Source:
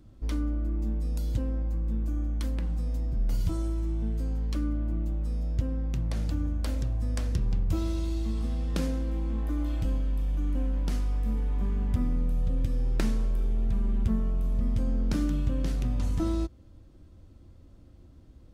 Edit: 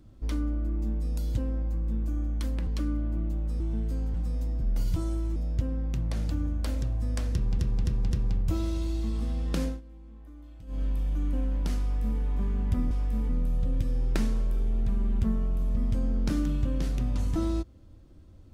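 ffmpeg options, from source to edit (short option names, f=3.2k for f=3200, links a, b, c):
-filter_complex "[0:a]asplit=12[a][b][c][d][e][f][g][h][i][j][k][l];[a]atrim=end=2.672[m];[b]atrim=start=4.428:end=5.362[n];[c]atrim=start=3.888:end=4.432[o];[d]atrim=start=2.668:end=3.892[p];[e]atrim=start=5.358:end=7.592[q];[f]atrim=start=7.328:end=7.592[r];[g]atrim=start=7.328:end=7.592[s];[h]atrim=start=7.328:end=9.03,asetpts=PTS-STARTPTS,afade=t=out:st=1.552:d=0.15:silence=0.125893[t];[i]atrim=start=9.03:end=9.89,asetpts=PTS-STARTPTS,volume=-18dB[u];[j]atrim=start=9.89:end=12.132,asetpts=PTS-STARTPTS,afade=t=in:d=0.15:silence=0.125893[v];[k]atrim=start=11.038:end=11.422[w];[l]atrim=start=12.128[x];[m][n]acrossfade=d=0.004:c1=hsin:c2=hsin[y];[y][o]acrossfade=d=0.004:c1=hsin:c2=hsin[z];[z][p]acrossfade=d=0.004:c1=hsin:c2=hsin[aa];[aa][q]acrossfade=d=0.004:c1=hsin:c2=hsin[ab];[ab][r]acrossfade=d=0.004:c1=hsin:c2=hsin[ac];[ac][s]acrossfade=d=0.004:c1=hsin:c2=hsin[ad];[t][u][v]concat=n=3:v=0:a=1[ae];[ad][ae]acrossfade=d=0.004:c1=hsin:c2=hsin[af];[af][w]acrossfade=d=0.004:c1=hsin:c2=hsin[ag];[ag][x]acrossfade=d=0.004:c1=hsin:c2=hsin"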